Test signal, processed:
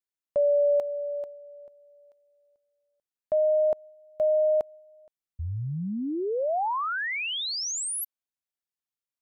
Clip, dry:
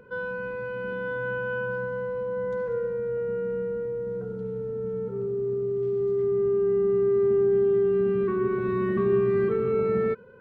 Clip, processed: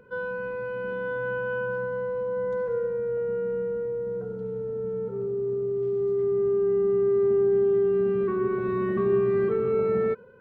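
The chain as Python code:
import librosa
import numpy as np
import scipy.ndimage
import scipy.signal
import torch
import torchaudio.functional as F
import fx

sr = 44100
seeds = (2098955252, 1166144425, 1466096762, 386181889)

y = fx.dynamic_eq(x, sr, hz=680.0, q=0.9, threshold_db=-40.0, ratio=4.0, max_db=5)
y = y * librosa.db_to_amplitude(-2.5)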